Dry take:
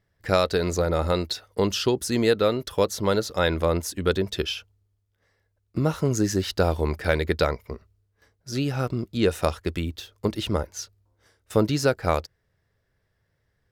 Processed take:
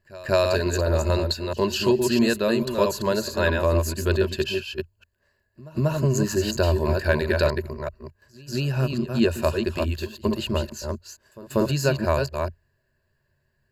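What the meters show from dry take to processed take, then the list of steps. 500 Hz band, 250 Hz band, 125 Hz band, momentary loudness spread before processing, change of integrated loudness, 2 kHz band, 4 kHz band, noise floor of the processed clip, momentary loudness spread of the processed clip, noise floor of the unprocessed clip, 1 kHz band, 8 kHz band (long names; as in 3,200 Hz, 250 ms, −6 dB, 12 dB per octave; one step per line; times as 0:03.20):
+1.0 dB, +2.0 dB, +3.0 dB, 8 LU, +1.5 dB, +2.5 dB, +0.5 dB, −71 dBFS, 11 LU, −73 dBFS, −0.5 dB, +0.5 dB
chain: delay that plays each chunk backwards 219 ms, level −4.5 dB
EQ curve with evenly spaced ripples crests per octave 1.4, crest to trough 13 dB
echo ahead of the sound 189 ms −20.5 dB
level −2 dB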